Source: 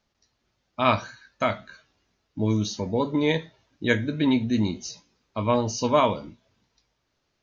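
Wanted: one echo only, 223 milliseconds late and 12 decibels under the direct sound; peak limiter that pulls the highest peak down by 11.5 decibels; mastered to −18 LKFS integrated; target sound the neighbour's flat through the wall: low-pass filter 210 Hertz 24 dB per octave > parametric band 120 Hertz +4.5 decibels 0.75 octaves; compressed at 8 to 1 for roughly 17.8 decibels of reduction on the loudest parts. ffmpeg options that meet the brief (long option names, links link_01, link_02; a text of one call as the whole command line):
ffmpeg -i in.wav -af "acompressor=threshold=-34dB:ratio=8,alimiter=level_in=8dB:limit=-24dB:level=0:latency=1,volume=-8dB,lowpass=frequency=210:width=0.5412,lowpass=frequency=210:width=1.3066,equalizer=frequency=120:width_type=o:width=0.75:gain=4.5,aecho=1:1:223:0.251,volume=28dB" out.wav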